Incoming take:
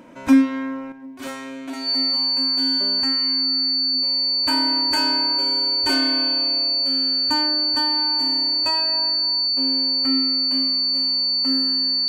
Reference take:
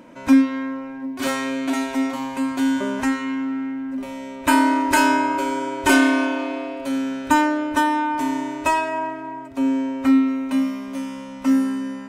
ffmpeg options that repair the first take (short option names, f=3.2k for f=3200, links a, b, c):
-af "bandreject=f=4.5k:w=30,asetnsamples=n=441:p=0,asendcmd='0.92 volume volume 8.5dB',volume=0dB"